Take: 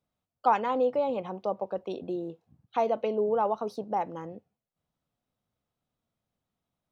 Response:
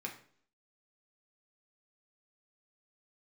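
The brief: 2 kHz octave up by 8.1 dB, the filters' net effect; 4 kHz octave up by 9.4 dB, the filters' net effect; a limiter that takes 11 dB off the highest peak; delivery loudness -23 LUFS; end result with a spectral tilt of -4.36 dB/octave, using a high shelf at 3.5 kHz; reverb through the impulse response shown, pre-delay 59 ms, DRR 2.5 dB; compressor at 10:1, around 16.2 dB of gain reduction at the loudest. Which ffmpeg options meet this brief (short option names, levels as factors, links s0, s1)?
-filter_complex "[0:a]equalizer=f=2000:t=o:g=7.5,highshelf=f=3500:g=7.5,equalizer=f=4000:t=o:g=4.5,acompressor=threshold=0.0251:ratio=10,alimiter=level_in=2.24:limit=0.0631:level=0:latency=1,volume=0.447,asplit=2[s0][s1];[1:a]atrim=start_sample=2205,adelay=59[s2];[s1][s2]afir=irnorm=-1:irlink=0,volume=0.75[s3];[s0][s3]amix=inputs=2:normalize=0,volume=6.31"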